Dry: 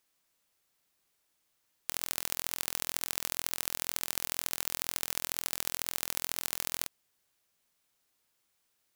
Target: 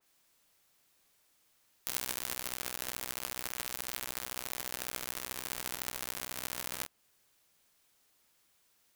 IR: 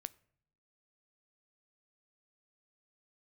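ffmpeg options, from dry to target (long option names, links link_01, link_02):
-filter_complex "[0:a]asplit=2[link_01][link_02];[link_02]asetrate=66075,aresample=44100,atempo=0.66742,volume=-4dB[link_03];[link_01][link_03]amix=inputs=2:normalize=0,aeval=exprs='(mod(4.22*val(0)+1,2)-1)/4.22':channel_layout=same,adynamicequalizer=threshold=0.00158:dfrequency=2700:dqfactor=0.7:tfrequency=2700:tqfactor=0.7:attack=5:release=100:ratio=0.375:range=2.5:mode=cutabove:tftype=highshelf,volume=5dB"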